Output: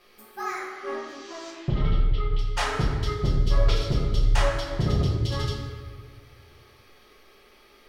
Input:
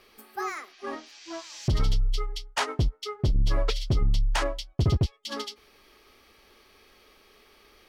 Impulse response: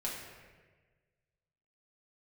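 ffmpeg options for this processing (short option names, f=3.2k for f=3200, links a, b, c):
-filter_complex "[0:a]asettb=1/sr,asplit=3[a][b][c];[a]atrim=end=1.504[d];[b]atrim=start=1.5:end=2.39,asetpts=PTS-STARTPTS,afade=t=in:d=0.004:c=qsin,afade=t=out:st=0.886:d=0.004:c=qsin,lowpass=f=3.1k:w=0.5412,lowpass=f=3.1k:w=1.3066[e];[c]atrim=start=2.386[f];[d][e]acrossfade=d=0.004:c1=hsin:c2=qsin[g];[g][f]acrossfade=d=0.004:c1=qsin:c2=hsin[h];[1:a]atrim=start_sample=2205,asetrate=36162,aresample=44100[i];[h][i]afir=irnorm=-1:irlink=0,volume=-1.5dB"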